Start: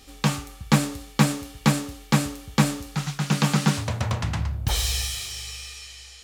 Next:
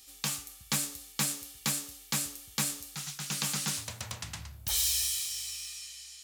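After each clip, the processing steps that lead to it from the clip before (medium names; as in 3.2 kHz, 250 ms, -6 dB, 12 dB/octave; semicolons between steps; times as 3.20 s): pre-emphasis filter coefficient 0.9; trim +1 dB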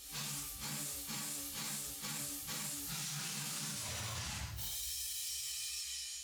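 phase randomisation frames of 200 ms; compression 2.5:1, threshold -38 dBFS, peak gain reduction 9 dB; peak limiter -35 dBFS, peak gain reduction 9.5 dB; trim +3 dB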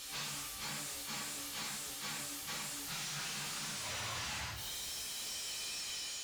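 overdrive pedal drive 19 dB, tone 3.6 kHz, clips at -31.5 dBFS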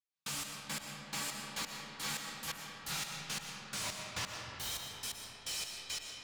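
trance gate "...xx...x." 173 bpm -60 dB; algorithmic reverb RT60 3.8 s, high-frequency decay 0.45×, pre-delay 75 ms, DRR 1 dB; trim +3 dB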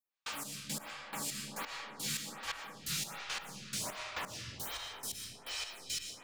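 lamp-driven phase shifter 1.3 Hz; trim +4 dB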